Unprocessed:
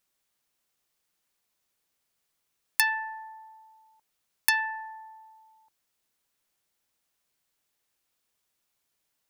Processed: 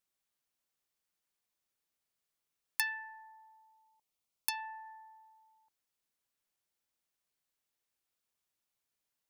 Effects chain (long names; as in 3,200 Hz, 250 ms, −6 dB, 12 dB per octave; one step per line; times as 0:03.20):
0:02.81–0:04.85: parametric band 950 Hz → 2,100 Hz −14 dB 0.32 octaves
level −9 dB